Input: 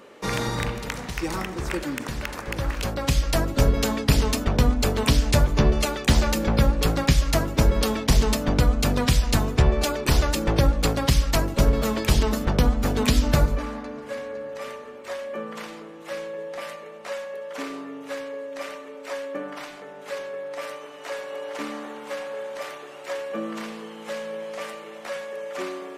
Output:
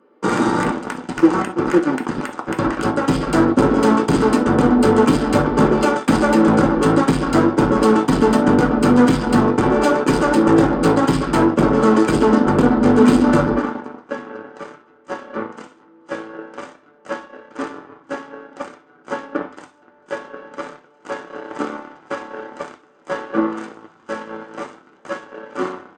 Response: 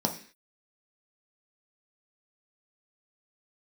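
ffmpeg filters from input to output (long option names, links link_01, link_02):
-filter_complex "[0:a]aresample=11025,volume=21.5dB,asoftclip=hard,volume=-21.5dB,aresample=44100,aeval=exprs='0.158*(cos(1*acos(clip(val(0)/0.158,-1,1)))-cos(1*PI/2))+0.0251*(cos(7*acos(clip(val(0)/0.158,-1,1)))-cos(7*PI/2))':channel_layout=same[link_01];[1:a]atrim=start_sample=2205,afade=type=out:start_time=0.16:duration=0.01,atrim=end_sample=7497,asetrate=66150,aresample=44100[link_02];[link_01][link_02]afir=irnorm=-1:irlink=0,volume=2.5dB"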